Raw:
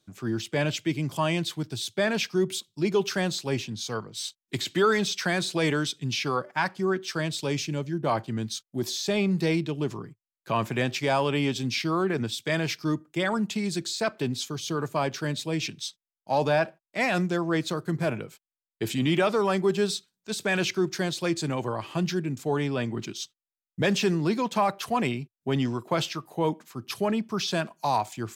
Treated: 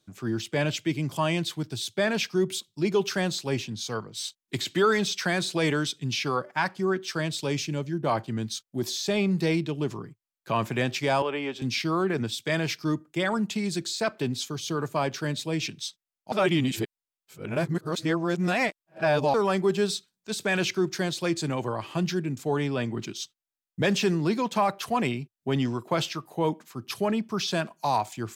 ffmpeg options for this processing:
ffmpeg -i in.wav -filter_complex "[0:a]asettb=1/sr,asplit=3[link_01][link_02][link_03];[link_01]atrim=end=11.224[link_04];[link_02]atrim=start=11.22:end=11.62,asetpts=PTS-STARTPTS,afade=type=in:duration=0.004:curve=qsin,afade=type=out:start_time=0.396:duration=0.004:curve=qsin,acrossover=split=320 2800:gain=0.126 1 0.2[link_05][link_06][link_07];[link_05][link_06][link_07]amix=inputs=3:normalize=0[link_08];[link_03]atrim=start=11.616[link_09];[link_04][link_08]acrossfade=duration=0.004:curve1=hsin:curve2=qsin[link_10];[link_10][link_09]acrossfade=duration=0.004:curve1=qsin:curve2=hsin,asplit=3[link_11][link_12][link_13];[link_11]atrim=end=16.322[link_14];[link_12]atrim=start=16.318:end=19.342,asetpts=PTS-STARTPTS,areverse[link_15];[link_13]atrim=start=19.338[link_16];[link_14][link_15]acrossfade=duration=0.004:curve1=hsin:curve2=hsin[link_17];[link_17][link_16]acrossfade=duration=0.004:curve1=hsin:curve2=hsin" out.wav

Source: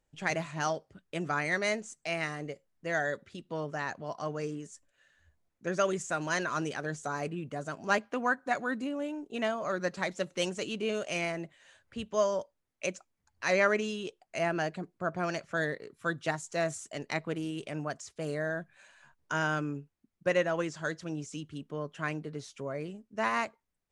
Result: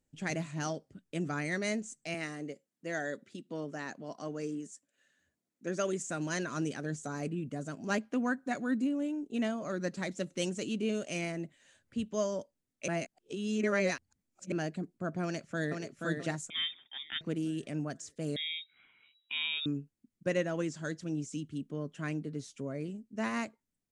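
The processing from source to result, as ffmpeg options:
ffmpeg -i in.wav -filter_complex "[0:a]asettb=1/sr,asplit=3[link_01][link_02][link_03];[link_01]atrim=end=2.144[link_04];[link_02]atrim=start=2.14:end=6.07,asetpts=PTS-STARTPTS,afade=type=in:duration=0.004:curve=qsin,afade=type=out:start_time=3.926:duration=0.004:curve=qsin,highpass=210[link_05];[link_03]atrim=start=6.066[link_06];[link_04][link_05]acrossfade=duration=0.004:curve1=hsin:curve2=qsin[link_07];[link_07][link_06]acrossfade=duration=0.004:curve1=qsin:curve2=hsin,asplit=2[link_08][link_09];[link_09]afade=type=in:start_time=15.23:duration=0.01,afade=type=out:start_time=15.81:duration=0.01,aecho=0:1:480|960|1440|1920|2400:0.630957|0.252383|0.100953|0.0403813|0.0161525[link_10];[link_08][link_10]amix=inputs=2:normalize=0,asettb=1/sr,asplit=3[link_11][link_12][link_13];[link_11]atrim=end=16.504[link_14];[link_12]atrim=start=16.5:end=17.21,asetpts=PTS-STARTPTS,afade=type=in:duration=0.004:curve=qsin,afade=type=out:start_time=0.706:duration=0.004:curve=qsin,lowpass=frequency=3200:width_type=q:width=0.5098,lowpass=frequency=3200:width_type=q:width=0.6013,lowpass=frequency=3200:width_type=q:width=0.9,lowpass=frequency=3200:width_type=q:width=2.563,afreqshift=-3800[link_15];[link_13]atrim=start=17.206[link_16];[link_14][link_15]acrossfade=duration=0.004:curve1=hsin:curve2=qsin[link_17];[link_17][link_16]acrossfade=duration=0.004:curve1=qsin:curve2=hsin,asettb=1/sr,asplit=3[link_18][link_19][link_20];[link_18]atrim=end=18.364[link_21];[link_19]atrim=start=18.36:end=19.66,asetpts=PTS-STARTPTS,afade=type=in:duration=0.004:curve=qsin,afade=type=out:start_time=1.296:duration=0.004:curve=qsin,lowpass=frequency=3300:width_type=q:width=0.5098,lowpass=frequency=3300:width_type=q:width=0.6013,lowpass=frequency=3300:width_type=q:width=0.9,lowpass=frequency=3300:width_type=q:width=2.563,afreqshift=-3900[link_22];[link_20]atrim=start=19.656[link_23];[link_21][link_22]acrossfade=duration=0.004:curve1=hsin:curve2=qsin[link_24];[link_24][link_23]acrossfade=duration=0.004:curve1=qsin:curve2=hsin,asplit=3[link_25][link_26][link_27];[link_25]atrim=end=12.882[link_28];[link_26]atrim=start=12.878:end=14.522,asetpts=PTS-STARTPTS,areverse[link_29];[link_27]atrim=start=14.518[link_30];[link_28][link_29]acrossfade=duration=0.004:curve1=hsin:curve2=hsin[link_31];[link_31][link_30]acrossfade=duration=0.004:curve1=hsin:curve2=hsin,equalizer=frequency=125:width_type=o:width=1:gain=4,equalizer=frequency=250:width_type=o:width=1:gain=10,equalizer=frequency=1000:width_type=o:width=1:gain=-5,equalizer=frequency=8000:width_type=o:width=1:gain=6,volume=-5dB" out.wav

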